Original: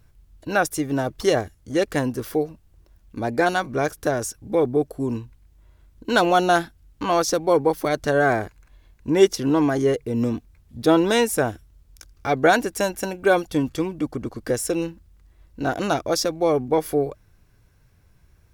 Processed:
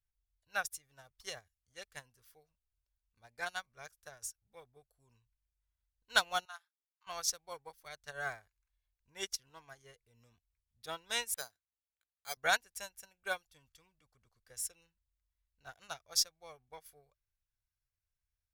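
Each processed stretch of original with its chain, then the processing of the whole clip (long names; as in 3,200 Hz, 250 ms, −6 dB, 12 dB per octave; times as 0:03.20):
0:06.45–0:07.07: four-pole ladder high-pass 910 Hz, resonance 50% + comb filter 5.6 ms, depth 39%
0:11.34–0:12.37: Bessel high-pass filter 270 Hz + bad sample-rate conversion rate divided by 8×, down filtered, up hold
whole clip: guitar amp tone stack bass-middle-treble 10-0-10; expander for the loud parts 2.5 to 1, over −40 dBFS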